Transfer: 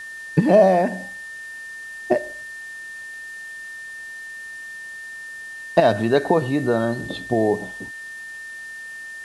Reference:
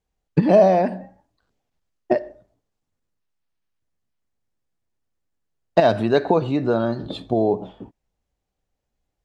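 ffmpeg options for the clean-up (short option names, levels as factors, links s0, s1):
-af "bandreject=f=1800:w=30,afftdn=nr=30:nf=-36"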